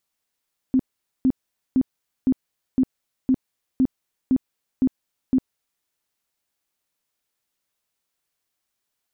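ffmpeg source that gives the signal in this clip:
-f lavfi -i "aevalsrc='0.2*sin(2*PI*260*mod(t,0.51))*lt(mod(t,0.51),14/260)':d=5.1:s=44100"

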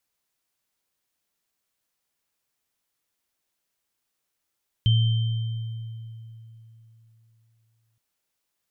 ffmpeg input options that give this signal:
-f lavfi -i "aevalsrc='0.178*pow(10,-3*t/3.45)*sin(2*PI*113*t)+0.0531*pow(10,-3*t/1.96)*sin(2*PI*3120*t)':d=3.12:s=44100"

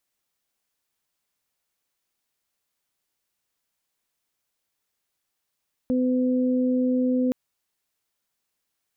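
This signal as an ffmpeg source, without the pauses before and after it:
-f lavfi -i "aevalsrc='0.1*sin(2*PI*253*t)+0.0447*sin(2*PI*506*t)':d=1.42:s=44100"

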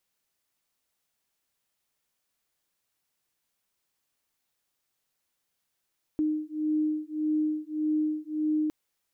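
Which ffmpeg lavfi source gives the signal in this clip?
-f lavfi -i "aevalsrc='0.0376*(sin(2*PI*306*t)+sin(2*PI*307.7*t))':d=2.51:s=44100"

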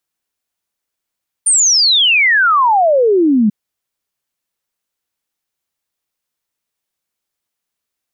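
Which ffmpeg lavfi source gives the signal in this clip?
-f lavfi -i "aevalsrc='0.398*clip(min(t,2.04-t)/0.01,0,1)*sin(2*PI*9300*2.04/log(200/9300)*(exp(log(200/9300)*t/2.04)-1))':d=2.04:s=44100"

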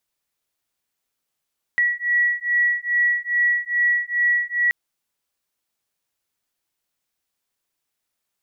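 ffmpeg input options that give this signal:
-f lavfi -i "aevalsrc='0.0944*(sin(2*PI*1930*t)+sin(2*PI*1932.4*t))':d=2.93:s=44100"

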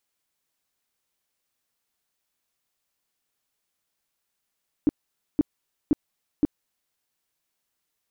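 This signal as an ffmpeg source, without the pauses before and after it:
-f lavfi -i "aevalsrc='0.188*sin(2*PI*297*mod(t,0.52))*lt(mod(t,0.52),6/297)':d=2.08:s=44100"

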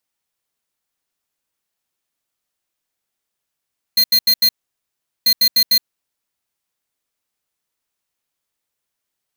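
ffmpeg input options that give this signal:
-f lavfi -i "aevalsrc='0.237*(2*lt(mod(4190*t,1),0.5)-1)*clip(min(mod(mod(t,1.29),0.15),0.07-mod(mod(t,1.29),0.15))/0.005,0,1)*lt(mod(t,1.29),0.6)':d=2.58:s=44100"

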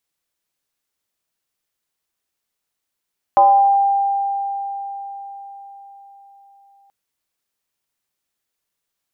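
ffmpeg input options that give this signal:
-f lavfi -i "aevalsrc='0.447*pow(10,-3*t/4.79)*sin(2*PI*795*t+0.77*pow(10,-3*t/0.86)*sin(2*PI*0.28*795*t))':d=3.53:s=44100"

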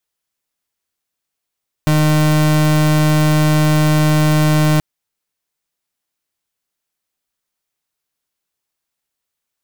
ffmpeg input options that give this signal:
-f lavfi -i "aevalsrc='0.237*(2*lt(mod(153*t,1),0.36)-1)':d=2.93:s=44100"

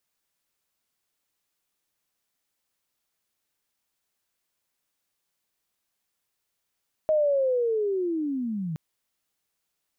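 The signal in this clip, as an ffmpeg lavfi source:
-f lavfi -i "aevalsrc='pow(10,(-18.5-9.5*t/1.67)/20)*sin(2*PI*(630*t-480*t*t/(2*1.67)))':d=1.67:s=44100"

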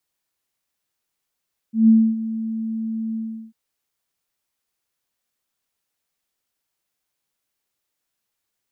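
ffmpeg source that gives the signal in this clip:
-f lavfi -i "aevalsrc='0.398*sin(2*PI*223*t)':d=1.795:s=44100,afade=t=in:d=0.153,afade=t=out:st=0.153:d=0.272:silence=0.178,afade=t=out:st=1.43:d=0.365"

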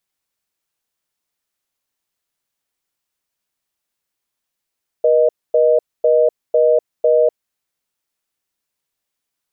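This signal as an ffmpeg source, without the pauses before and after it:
-f lavfi -i "aevalsrc='0.237*(sin(2*PI*480*t)+sin(2*PI*620*t))*clip(min(mod(t,0.5),0.25-mod(t,0.5))/0.005,0,1)':d=2.47:s=44100"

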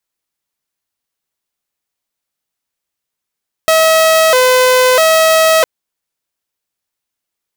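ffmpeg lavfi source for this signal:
-f lavfi -i "aevalsrc='0.596*(2*mod((575*t+67/0.77*(0.5-abs(mod(0.77*t,1)-0.5))),1)-1)':d=1.96:s=44100"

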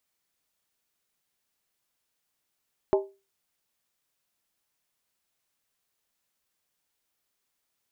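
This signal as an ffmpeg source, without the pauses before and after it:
-f lavfi -i "aevalsrc='0.158*pow(10,-3*t/0.29)*sin(2*PI*392*t)+0.0841*pow(10,-3*t/0.23)*sin(2*PI*624.8*t)+0.0447*pow(10,-3*t/0.198)*sin(2*PI*837.3*t)+0.0237*pow(10,-3*t/0.191)*sin(2*PI*900*t)+0.0126*pow(10,-3*t/0.178)*sin(2*PI*1040*t)':d=0.63:s=44100"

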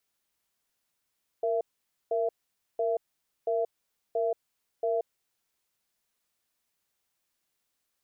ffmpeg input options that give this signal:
-f lavfi -i "aevalsrc='0.0422*(sin(2*PI*464*t)+sin(2*PI*670*t))*clip(min(mod(t,0.68),0.18-mod(t,0.68))/0.005,0,1)':d=4.01:s=44100"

